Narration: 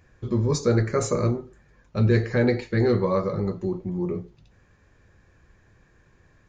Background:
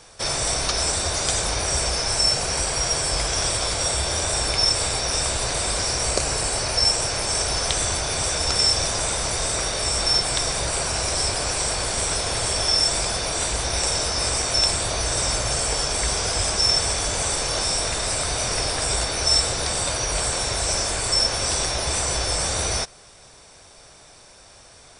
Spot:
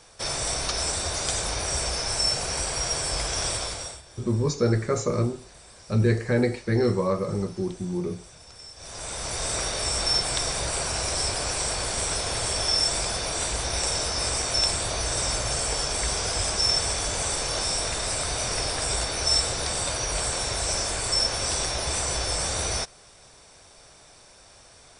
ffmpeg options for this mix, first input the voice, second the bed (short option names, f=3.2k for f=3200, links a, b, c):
-filter_complex "[0:a]adelay=3950,volume=-1.5dB[a];[1:a]volume=17.5dB,afade=t=out:st=3.53:d=0.49:silence=0.0891251,afade=t=in:st=8.76:d=0.78:silence=0.0794328[b];[a][b]amix=inputs=2:normalize=0"